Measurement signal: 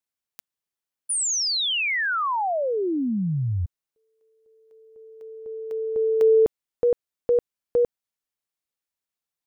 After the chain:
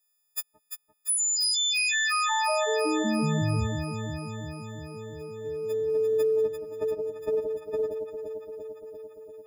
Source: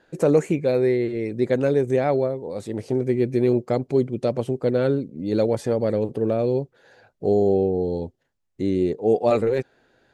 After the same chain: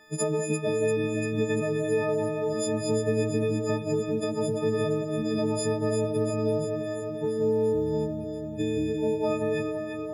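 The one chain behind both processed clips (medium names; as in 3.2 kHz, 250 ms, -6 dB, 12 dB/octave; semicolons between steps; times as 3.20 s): partials quantised in pitch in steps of 6 st; peaking EQ 140 Hz +2.5 dB 0.71 oct; compression 5:1, threshold -26 dBFS; on a send: echo whose repeats swap between lows and highs 172 ms, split 910 Hz, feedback 84%, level -5 dB; on the sum: short-mantissa float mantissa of 6-bit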